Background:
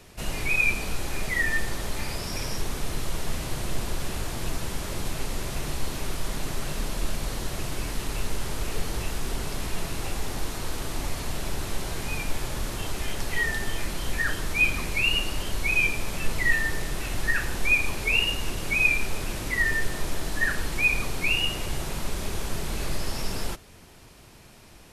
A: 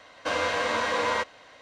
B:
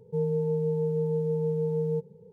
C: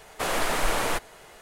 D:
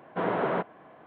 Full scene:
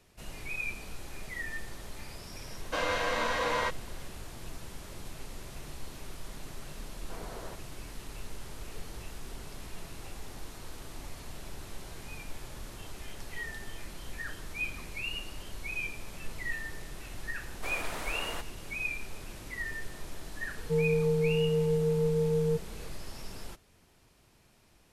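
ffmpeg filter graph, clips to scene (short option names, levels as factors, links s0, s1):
-filter_complex "[0:a]volume=0.224[s0];[1:a]atrim=end=1.61,asetpts=PTS-STARTPTS,volume=0.631,afade=t=in:d=0.004:c=hsin,afade=t=out:st=1.606:d=0.004:c=hsin,adelay=2470[s1];[4:a]atrim=end=1.06,asetpts=PTS-STARTPTS,volume=0.126,afade=t=in:d=0.004:c=hsin,afade=t=out:st=1.056:d=0.004:c=hsin,adelay=6930[s2];[3:a]atrim=end=1.41,asetpts=PTS-STARTPTS,volume=0.237,afade=t=in:d=0.004:c=hsin,afade=t=out:st=1.406:d=0.004:c=hsin,adelay=17430[s3];[2:a]atrim=end=2.32,asetpts=PTS-STARTPTS,afade=t=in:d=0.004:c=hsin,afade=t=out:st=2.316:d=0.004:c=hsin,adelay=20570[s4];[s0][s1][s2][s3][s4]amix=inputs=5:normalize=0"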